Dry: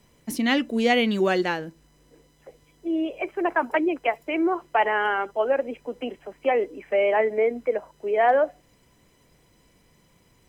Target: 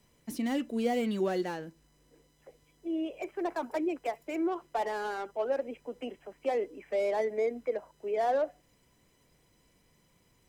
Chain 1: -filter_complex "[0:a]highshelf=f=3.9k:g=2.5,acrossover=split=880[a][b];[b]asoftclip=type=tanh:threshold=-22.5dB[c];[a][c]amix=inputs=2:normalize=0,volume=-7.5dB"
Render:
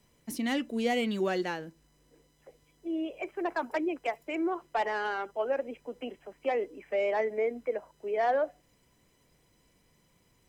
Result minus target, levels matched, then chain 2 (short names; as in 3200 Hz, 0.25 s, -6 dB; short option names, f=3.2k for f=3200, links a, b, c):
soft clip: distortion -8 dB
-filter_complex "[0:a]highshelf=f=3.9k:g=2.5,acrossover=split=880[a][b];[b]asoftclip=type=tanh:threshold=-34dB[c];[a][c]amix=inputs=2:normalize=0,volume=-7.5dB"